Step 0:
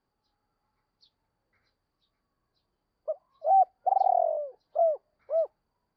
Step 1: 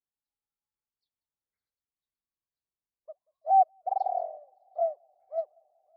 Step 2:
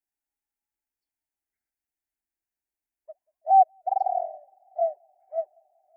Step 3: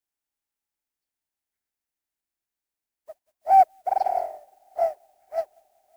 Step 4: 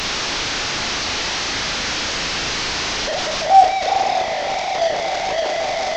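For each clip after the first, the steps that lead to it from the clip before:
echo machine with several playback heads 187 ms, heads first and third, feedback 69%, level −17 dB; expander for the loud parts 2.5 to 1, over −36 dBFS; level +1.5 dB
phaser with its sweep stopped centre 760 Hz, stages 8; level +4 dB
compressing power law on the bin magnitudes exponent 0.64; level +1.5 dB
linear delta modulator 32 kbit/s, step −19.5 dBFS; on a send: flutter between parallel walls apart 6.2 metres, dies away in 0.32 s; on the sum: level +3 dB

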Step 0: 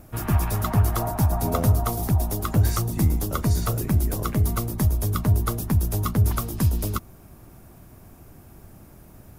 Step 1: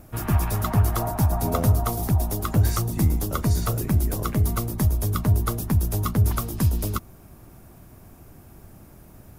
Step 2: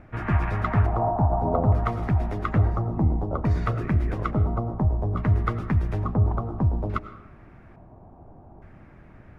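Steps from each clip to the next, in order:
no processing that can be heard
auto-filter low-pass square 0.58 Hz 820–2,000 Hz; on a send at −12.5 dB: convolution reverb RT60 0.80 s, pre-delay 60 ms; on the sum: level −1.5 dB

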